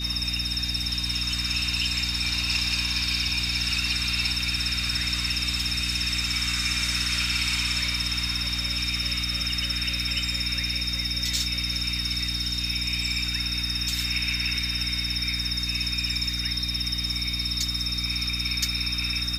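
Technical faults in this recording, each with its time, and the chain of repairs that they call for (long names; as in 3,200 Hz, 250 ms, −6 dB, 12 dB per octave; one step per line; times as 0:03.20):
mains hum 60 Hz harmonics 5 −33 dBFS
whistle 3,700 Hz −31 dBFS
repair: hum removal 60 Hz, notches 5
notch filter 3,700 Hz, Q 30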